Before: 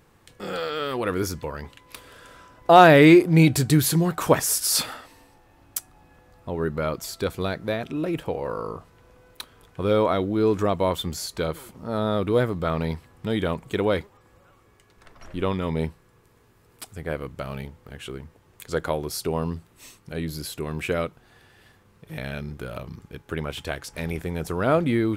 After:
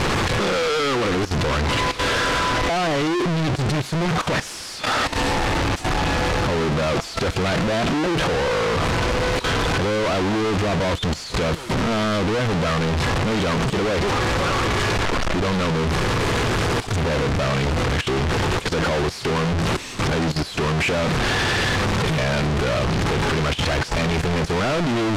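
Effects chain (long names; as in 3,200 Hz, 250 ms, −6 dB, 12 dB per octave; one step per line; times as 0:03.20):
sign of each sample alone
low-pass filter 5,200 Hz 12 dB per octave
output level in coarse steps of 13 dB
level +5.5 dB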